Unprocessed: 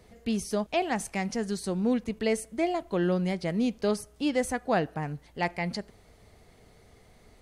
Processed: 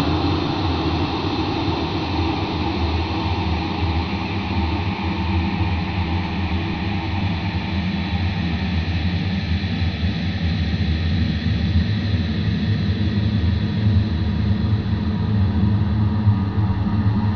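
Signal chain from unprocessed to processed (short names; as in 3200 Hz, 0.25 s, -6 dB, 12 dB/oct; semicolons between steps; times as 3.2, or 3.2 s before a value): spectral swells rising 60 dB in 0.42 s; Paulstretch 7.1×, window 1.00 s, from 0.98; upward compressor, threshold -33 dBFS; speed mistake 78 rpm record played at 33 rpm; gain +8.5 dB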